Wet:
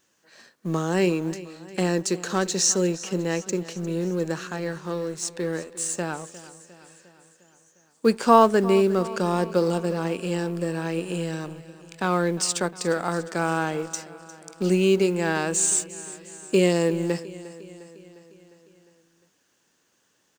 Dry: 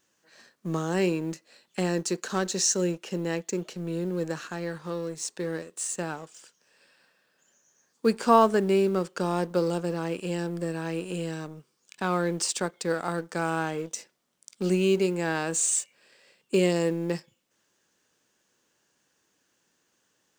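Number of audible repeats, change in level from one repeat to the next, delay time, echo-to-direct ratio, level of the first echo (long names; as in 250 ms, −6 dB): 4, −4.5 dB, 354 ms, −15.0 dB, −17.0 dB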